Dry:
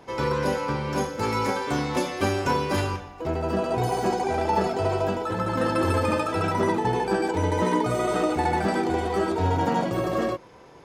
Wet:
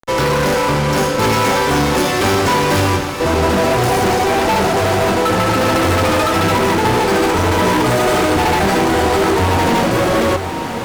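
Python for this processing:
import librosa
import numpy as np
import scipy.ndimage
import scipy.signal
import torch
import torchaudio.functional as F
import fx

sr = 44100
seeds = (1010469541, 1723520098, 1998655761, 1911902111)

p1 = fx.fuzz(x, sr, gain_db=34.0, gate_db=-41.0)
y = p1 + fx.echo_diffused(p1, sr, ms=1010, feedback_pct=42, wet_db=-8.0, dry=0)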